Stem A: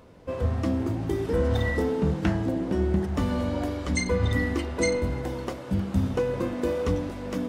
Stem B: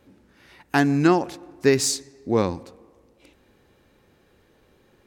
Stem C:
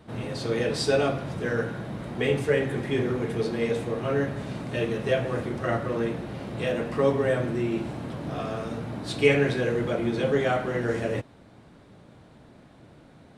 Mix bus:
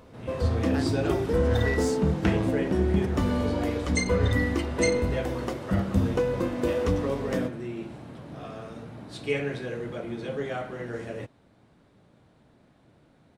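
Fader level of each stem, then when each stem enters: +0.5, −15.5, −8.0 decibels; 0.00, 0.00, 0.05 seconds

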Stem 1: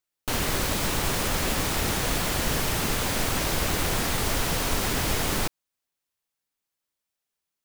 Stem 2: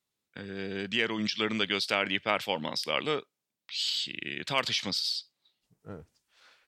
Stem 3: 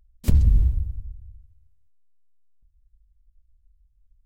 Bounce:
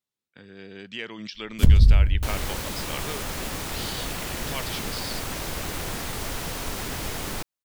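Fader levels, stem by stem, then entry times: −5.5, −6.5, +2.5 decibels; 1.95, 0.00, 1.35 seconds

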